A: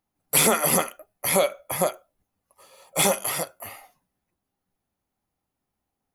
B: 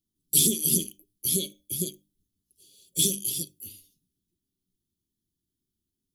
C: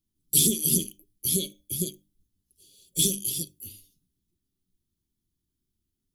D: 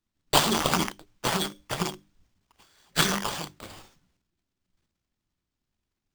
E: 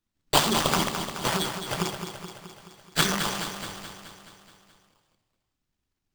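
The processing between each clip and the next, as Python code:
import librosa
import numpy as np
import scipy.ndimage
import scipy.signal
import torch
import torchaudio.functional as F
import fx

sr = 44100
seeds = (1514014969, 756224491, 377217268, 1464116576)

y1 = scipy.signal.sosfilt(scipy.signal.cheby1(4, 1.0, [370.0, 3200.0], 'bandstop', fs=sr, output='sos'), x)
y1 = fx.hum_notches(y1, sr, base_hz=50, count=6)
y2 = fx.low_shelf(y1, sr, hz=79.0, db=10.5)
y3 = fx.transient(y2, sr, attack_db=8, sustain_db=12)
y3 = fx.sample_hold(y3, sr, seeds[0], rate_hz=12000.0, jitter_pct=0)
y3 = y3 * librosa.db_to_amplitude(-5.0)
y4 = fx.echo_feedback(y3, sr, ms=213, feedback_pct=60, wet_db=-8.0)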